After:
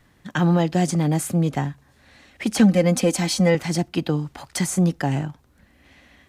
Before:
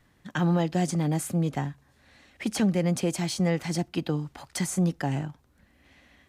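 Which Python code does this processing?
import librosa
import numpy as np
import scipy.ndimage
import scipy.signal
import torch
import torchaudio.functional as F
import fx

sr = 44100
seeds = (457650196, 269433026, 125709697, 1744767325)

y = fx.comb(x, sr, ms=3.9, depth=0.89, at=(2.59, 3.55))
y = F.gain(torch.from_numpy(y), 5.5).numpy()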